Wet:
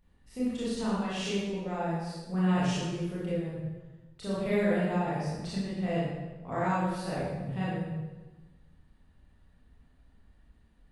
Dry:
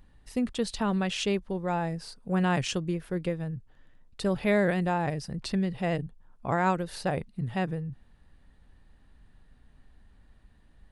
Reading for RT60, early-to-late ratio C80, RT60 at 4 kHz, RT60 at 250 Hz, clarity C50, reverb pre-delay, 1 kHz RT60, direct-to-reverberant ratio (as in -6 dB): 1.2 s, 1.0 dB, 0.95 s, 1.5 s, -3.0 dB, 25 ms, 1.1 s, -9.0 dB